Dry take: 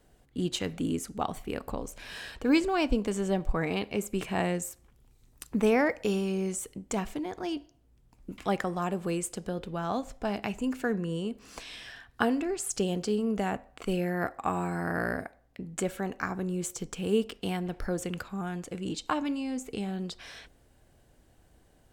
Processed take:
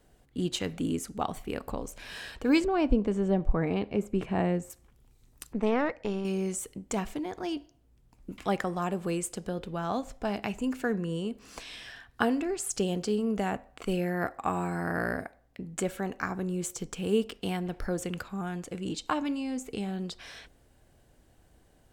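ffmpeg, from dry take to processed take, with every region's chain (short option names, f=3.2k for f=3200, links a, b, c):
-filter_complex "[0:a]asettb=1/sr,asplit=3[a][b][c];[a]atrim=end=2.644[d];[b]atrim=start=2.64:end=4.7,asetpts=PTS-STARTPTS,afade=t=in:d=0.004:c=qsin,afade=t=out:st=2.056:d=0.004:c=qsin,lowpass=f=2.3k:p=1,tiltshelf=f=740:g=3.5[e];[c]atrim=start=4.696[f];[d][e]acrossfade=d=0.004:c1=hsin:c2=qsin[g];[g][f]acrossfade=d=0.004:c1=qsin:c2=hsin,asettb=1/sr,asplit=3[h][i][j];[h]atrim=end=5.534[k];[i]atrim=start=5.53:end=6.25,asetpts=PTS-STARTPTS,afade=t=in:d=0.004:c=qsin,afade=t=out:st=0.716:d=0.004:c=qsin,lowpass=7.6k,aemphasis=mode=reproduction:type=cd,aeval=exprs='(tanh(7.08*val(0)+0.8)-tanh(0.8))/7.08':c=same[l];[j]atrim=start=6.246[m];[k][l]acrossfade=d=0.004:c1=hsin:c2=qsin[n];[n][m]acrossfade=d=0.004:c1=qsin:c2=hsin"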